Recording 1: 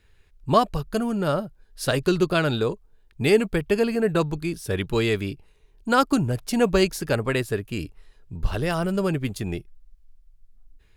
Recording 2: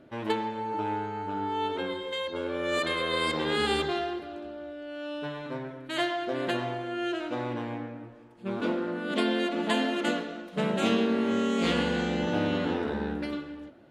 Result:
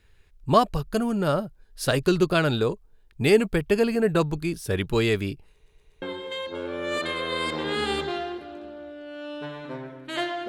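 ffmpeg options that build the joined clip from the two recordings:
-filter_complex "[0:a]apad=whole_dur=10.48,atrim=end=10.48,asplit=4[s0][s1][s2][s3];[s0]atrim=end=5.662[s4];[s1]atrim=start=5.538:end=5.662[s5];[s2]atrim=start=5.538:end=5.662[s6];[s3]atrim=start=5.538:end=5.662[s7];[1:a]atrim=start=1.828:end=6.29[s8];[s4][s5]acrossfade=d=0.004:c1=hsin:c2=hsin[s9];[s9][s6]acrossfade=d=0.004:c1=hsin:c2=hsin[s10];[s10][s7]acrossfade=d=0.004:c1=hsin:c2=hsin[s11];[s11][s8]acrossfade=d=0.004:c1=hsin:c2=hsin"

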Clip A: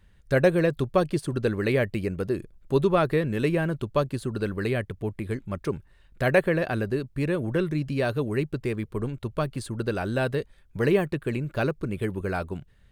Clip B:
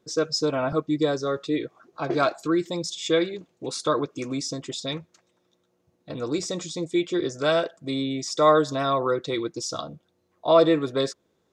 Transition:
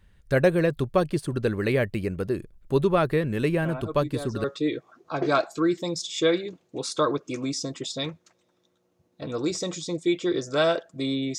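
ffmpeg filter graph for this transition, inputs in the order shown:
-filter_complex "[1:a]asplit=2[s0][s1];[0:a]apad=whole_dur=11.38,atrim=end=11.38,atrim=end=4.442[s2];[s1]atrim=start=1.318:end=8.26[s3];[s0]atrim=start=0.5:end=1.32,asetpts=PTS-STARTPTS,volume=0.299,afade=t=in:d=0.004:c=hsin,afade=t=out:st=0.816:d=0.004:c=hsin,adelay=3620[s4];[s2][s3]acrossfade=d=0.004:c1=hsin:c2=hsin[s5];[s5][s4]amix=inputs=2:normalize=0"

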